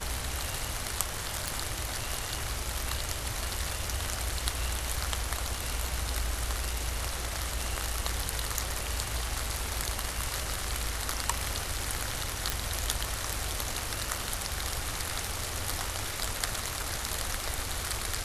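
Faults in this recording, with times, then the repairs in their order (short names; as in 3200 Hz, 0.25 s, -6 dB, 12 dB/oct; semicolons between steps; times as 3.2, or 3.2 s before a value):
1.48 pop
12.5 pop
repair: de-click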